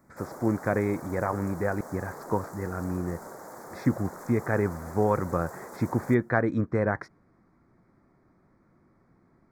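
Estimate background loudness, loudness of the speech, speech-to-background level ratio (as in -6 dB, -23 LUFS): -43.5 LUFS, -29.0 LUFS, 14.5 dB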